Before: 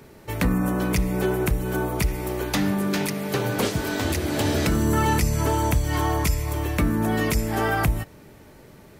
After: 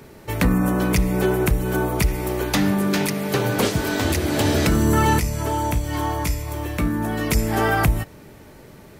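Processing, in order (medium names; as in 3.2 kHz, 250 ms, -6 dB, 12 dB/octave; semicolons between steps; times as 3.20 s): 5.19–7.31 s: feedback comb 59 Hz, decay 0.28 s, harmonics all, mix 70%; trim +3.5 dB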